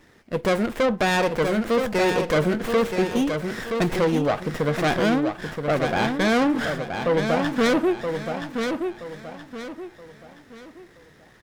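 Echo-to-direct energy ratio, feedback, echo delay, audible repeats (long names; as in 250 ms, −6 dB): −5.5 dB, 35%, 974 ms, 4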